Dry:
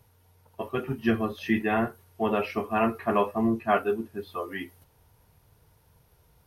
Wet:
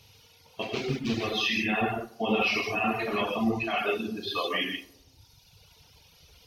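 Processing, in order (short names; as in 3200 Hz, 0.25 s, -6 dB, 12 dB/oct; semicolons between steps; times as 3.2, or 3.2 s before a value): 0.62–1.23 median filter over 41 samples; band shelf 3800 Hz +16 dB; limiter -20.5 dBFS, peak gain reduction 12.5 dB; tape echo 88 ms, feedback 70%, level -8 dB, low-pass 1100 Hz; non-linear reverb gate 0.22 s flat, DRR -3.5 dB; reverb removal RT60 1.4 s; 1.81–2.42 tilt shelf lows +3 dB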